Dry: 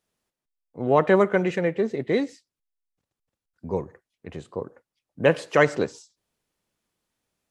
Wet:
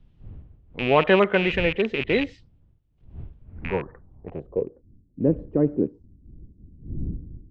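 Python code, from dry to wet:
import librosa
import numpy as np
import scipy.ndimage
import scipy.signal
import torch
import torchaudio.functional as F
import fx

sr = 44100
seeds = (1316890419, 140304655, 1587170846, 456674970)

y = fx.rattle_buzz(x, sr, strikes_db=-36.0, level_db=-22.0)
y = fx.dmg_wind(y, sr, seeds[0], corner_hz=82.0, level_db=-40.0)
y = fx.filter_sweep_lowpass(y, sr, from_hz=3100.0, to_hz=300.0, start_s=3.38, end_s=4.87, q=2.4)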